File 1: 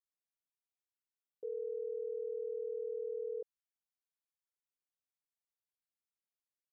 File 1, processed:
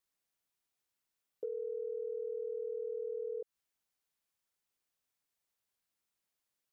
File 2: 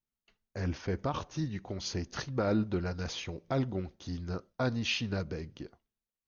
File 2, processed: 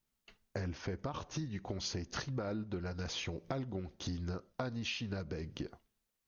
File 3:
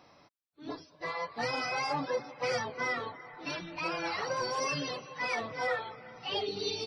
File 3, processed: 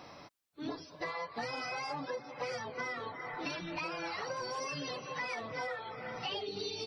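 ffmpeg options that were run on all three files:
ffmpeg -i in.wav -af "acompressor=threshold=-44dB:ratio=10,volume=8dB" out.wav

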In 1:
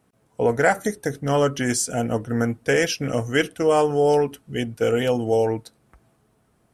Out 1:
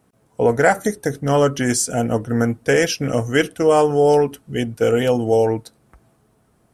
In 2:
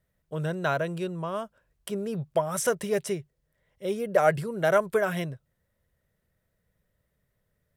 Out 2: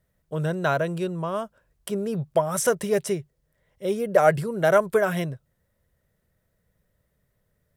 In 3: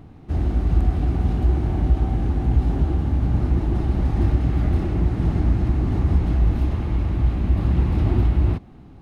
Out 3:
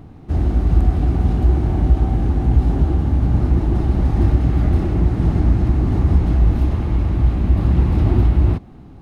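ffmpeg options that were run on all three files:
ffmpeg -i in.wav -af "equalizer=frequency=2600:width_type=o:width=1.6:gain=-2.5,volume=4dB" out.wav

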